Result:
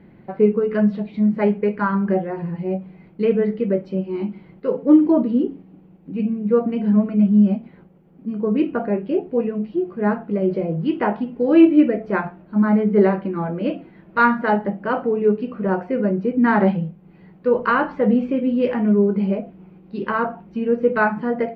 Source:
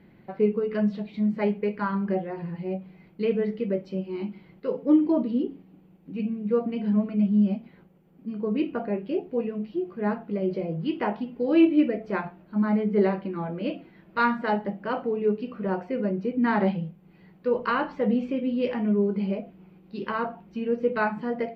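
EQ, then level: high shelf 2800 Hz -11.5 dB; dynamic EQ 1500 Hz, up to +4 dB, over -47 dBFS, Q 2.1; +7.0 dB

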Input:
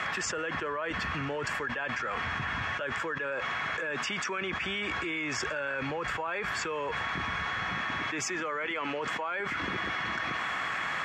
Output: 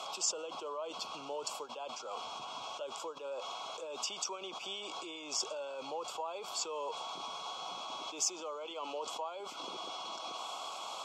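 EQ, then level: HPF 770 Hz 12 dB/oct; Butterworth band-stop 1800 Hz, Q 0.59; +3.0 dB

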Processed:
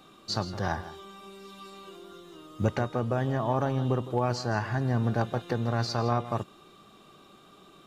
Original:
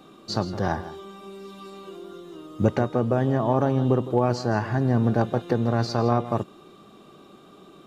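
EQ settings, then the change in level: bell 310 Hz -8 dB 2.8 oct; 0.0 dB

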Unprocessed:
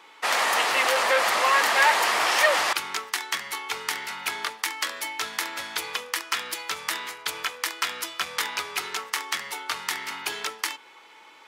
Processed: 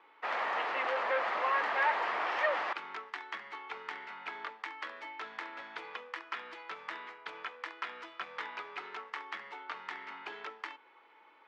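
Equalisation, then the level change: BPF 230–2100 Hz; air absorption 59 m; -8.5 dB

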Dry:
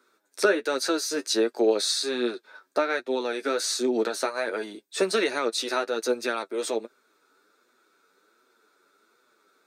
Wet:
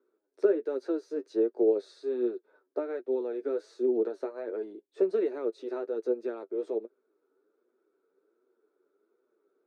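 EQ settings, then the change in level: band-pass 390 Hz, Q 2.8; 0.0 dB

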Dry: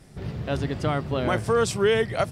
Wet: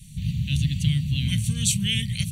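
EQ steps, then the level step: elliptic band-stop 180–2700 Hz, stop band 40 dB; Butterworth band-stop 5100 Hz, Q 5.3; high shelf 6900 Hz +6 dB; +7.5 dB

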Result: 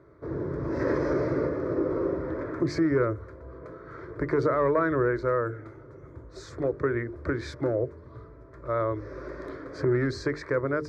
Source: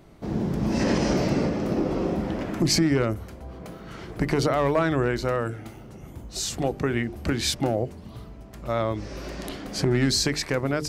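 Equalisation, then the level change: HPF 85 Hz 12 dB/oct; LPF 2000 Hz 12 dB/oct; fixed phaser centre 770 Hz, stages 6; +1.5 dB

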